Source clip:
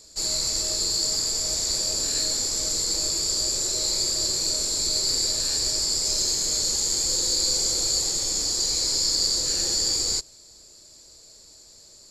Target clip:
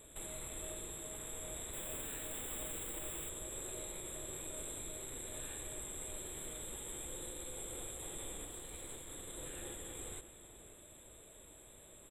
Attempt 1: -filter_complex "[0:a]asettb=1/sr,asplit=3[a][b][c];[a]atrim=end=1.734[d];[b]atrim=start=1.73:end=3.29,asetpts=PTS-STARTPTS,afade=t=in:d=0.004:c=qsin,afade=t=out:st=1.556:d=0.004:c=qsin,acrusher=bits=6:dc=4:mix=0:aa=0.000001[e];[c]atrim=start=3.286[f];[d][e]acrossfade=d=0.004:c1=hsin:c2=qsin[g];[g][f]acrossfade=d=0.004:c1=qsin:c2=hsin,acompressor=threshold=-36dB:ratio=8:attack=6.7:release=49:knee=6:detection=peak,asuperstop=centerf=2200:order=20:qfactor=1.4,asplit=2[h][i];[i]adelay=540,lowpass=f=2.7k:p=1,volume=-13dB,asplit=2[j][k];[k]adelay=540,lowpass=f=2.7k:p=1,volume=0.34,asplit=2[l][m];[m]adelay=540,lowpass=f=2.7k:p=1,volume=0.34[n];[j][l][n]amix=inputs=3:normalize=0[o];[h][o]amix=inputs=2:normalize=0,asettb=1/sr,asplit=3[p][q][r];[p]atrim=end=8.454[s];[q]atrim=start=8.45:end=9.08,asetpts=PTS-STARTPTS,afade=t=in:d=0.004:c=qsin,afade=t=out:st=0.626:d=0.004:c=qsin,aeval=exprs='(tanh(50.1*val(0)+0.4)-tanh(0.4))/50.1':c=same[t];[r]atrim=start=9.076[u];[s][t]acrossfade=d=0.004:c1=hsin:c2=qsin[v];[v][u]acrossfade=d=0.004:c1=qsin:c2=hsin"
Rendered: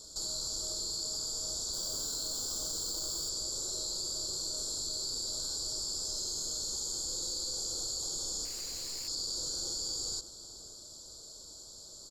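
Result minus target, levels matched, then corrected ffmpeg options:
2000 Hz band -17.5 dB
-filter_complex "[0:a]asettb=1/sr,asplit=3[a][b][c];[a]atrim=end=1.734[d];[b]atrim=start=1.73:end=3.29,asetpts=PTS-STARTPTS,afade=t=in:d=0.004:c=qsin,afade=t=out:st=1.556:d=0.004:c=qsin,acrusher=bits=6:dc=4:mix=0:aa=0.000001[e];[c]atrim=start=3.286[f];[d][e]acrossfade=d=0.004:c1=hsin:c2=qsin[g];[g][f]acrossfade=d=0.004:c1=qsin:c2=hsin,acompressor=threshold=-36dB:ratio=8:attack=6.7:release=49:knee=6:detection=peak,asuperstop=centerf=5400:order=20:qfactor=1.4,asplit=2[h][i];[i]adelay=540,lowpass=f=2.7k:p=1,volume=-13dB,asplit=2[j][k];[k]adelay=540,lowpass=f=2.7k:p=1,volume=0.34,asplit=2[l][m];[m]adelay=540,lowpass=f=2.7k:p=1,volume=0.34[n];[j][l][n]amix=inputs=3:normalize=0[o];[h][o]amix=inputs=2:normalize=0,asettb=1/sr,asplit=3[p][q][r];[p]atrim=end=8.454[s];[q]atrim=start=8.45:end=9.08,asetpts=PTS-STARTPTS,afade=t=in:d=0.004:c=qsin,afade=t=out:st=0.626:d=0.004:c=qsin,aeval=exprs='(tanh(50.1*val(0)+0.4)-tanh(0.4))/50.1':c=same[t];[r]atrim=start=9.076[u];[s][t]acrossfade=d=0.004:c1=hsin:c2=qsin[v];[v][u]acrossfade=d=0.004:c1=qsin:c2=hsin"

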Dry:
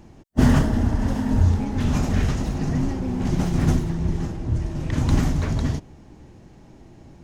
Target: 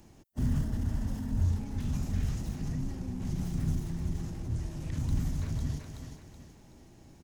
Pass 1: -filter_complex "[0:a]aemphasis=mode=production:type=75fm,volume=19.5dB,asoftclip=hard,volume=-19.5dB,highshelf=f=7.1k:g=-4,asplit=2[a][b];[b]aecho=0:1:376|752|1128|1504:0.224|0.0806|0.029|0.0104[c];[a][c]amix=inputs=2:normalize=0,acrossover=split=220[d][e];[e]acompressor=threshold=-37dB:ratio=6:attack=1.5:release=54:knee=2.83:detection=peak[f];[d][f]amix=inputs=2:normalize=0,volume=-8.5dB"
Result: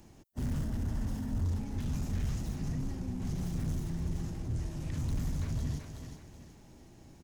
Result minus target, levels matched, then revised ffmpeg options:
overloaded stage: distortion +10 dB
-filter_complex "[0:a]aemphasis=mode=production:type=75fm,volume=12dB,asoftclip=hard,volume=-12dB,highshelf=f=7.1k:g=-4,asplit=2[a][b];[b]aecho=0:1:376|752|1128|1504:0.224|0.0806|0.029|0.0104[c];[a][c]amix=inputs=2:normalize=0,acrossover=split=220[d][e];[e]acompressor=threshold=-37dB:ratio=6:attack=1.5:release=54:knee=2.83:detection=peak[f];[d][f]amix=inputs=2:normalize=0,volume=-8.5dB"

